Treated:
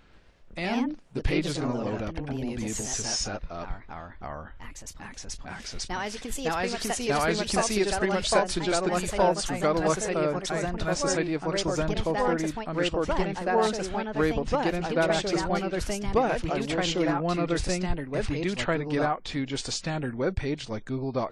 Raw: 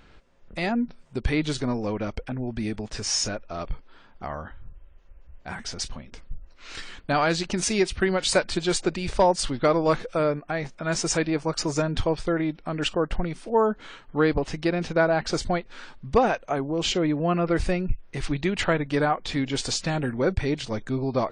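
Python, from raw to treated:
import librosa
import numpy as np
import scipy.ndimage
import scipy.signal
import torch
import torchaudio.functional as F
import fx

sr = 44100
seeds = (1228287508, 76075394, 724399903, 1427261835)

y = fx.echo_pitch(x, sr, ms=134, semitones=2, count=2, db_per_echo=-3.0)
y = y * librosa.db_to_amplitude(-4.0)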